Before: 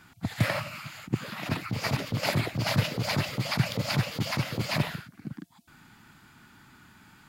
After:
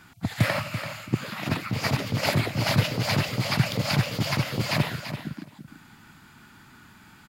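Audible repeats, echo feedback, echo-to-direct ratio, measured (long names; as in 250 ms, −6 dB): 2, 15%, −10.0 dB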